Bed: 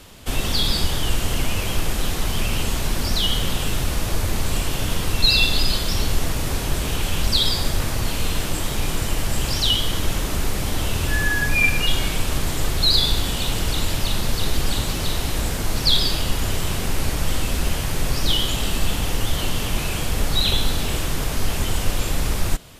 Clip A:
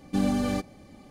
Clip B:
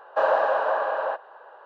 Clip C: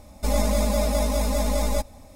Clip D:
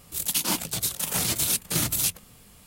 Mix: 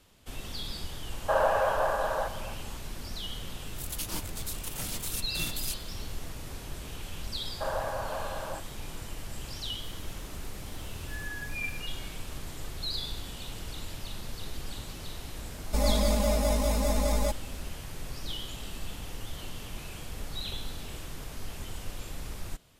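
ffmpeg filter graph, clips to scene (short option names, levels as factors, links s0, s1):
-filter_complex "[2:a]asplit=2[s0][s1];[4:a]asplit=2[s2][s3];[0:a]volume=0.141[s4];[s0]asplit=2[s5][s6];[s6]adelay=260,highpass=300,lowpass=3400,asoftclip=type=hard:threshold=0.119,volume=0.251[s7];[s5][s7]amix=inputs=2:normalize=0[s8];[s3]acompressor=threshold=0.00891:ratio=6:attack=3.2:release=140:knee=1:detection=peak[s9];[s8]atrim=end=1.65,asetpts=PTS-STARTPTS,volume=0.631,afade=t=in:d=0.004:c=hsin,afade=t=out:st=1.646:d=0.004:c=hsin,adelay=1120[s10];[s2]atrim=end=2.66,asetpts=PTS-STARTPTS,volume=0.266,afade=t=in:d=0.004:c=hsin,afade=t=out:st=2.656:d=0.004:c=hsin,adelay=3640[s11];[s1]atrim=end=1.65,asetpts=PTS-STARTPTS,volume=0.251,afade=t=in:d=0.004:c=hsin,afade=t=out:st=1.646:d=0.004:c=hsin,adelay=7440[s12];[s9]atrim=end=2.66,asetpts=PTS-STARTPTS,volume=0.15,afade=t=in:d=0.004:c=hsin,afade=t=out:st=2.656:d=0.004:c=hsin,adelay=9720[s13];[3:a]atrim=end=2.15,asetpts=PTS-STARTPTS,volume=0.668,afade=t=in:d=0.004:c=hsin,afade=t=out:st=2.146:d=0.004:c=hsin,adelay=15500[s14];[s4][s10][s11][s12][s13][s14]amix=inputs=6:normalize=0"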